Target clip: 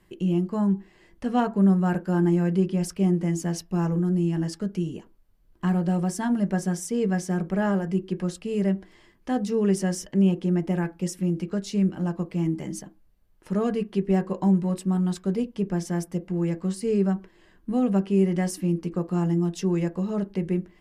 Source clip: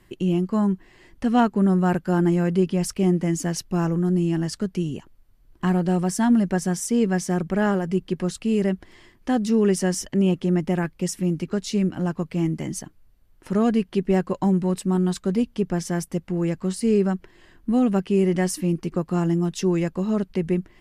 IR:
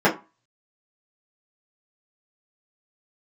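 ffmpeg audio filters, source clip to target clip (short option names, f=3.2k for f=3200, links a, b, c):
-filter_complex "[0:a]asplit=2[a][b];[1:a]atrim=start_sample=2205,lowpass=3.5k[c];[b][c]afir=irnorm=-1:irlink=0,volume=-28dB[d];[a][d]amix=inputs=2:normalize=0,volume=-5.5dB"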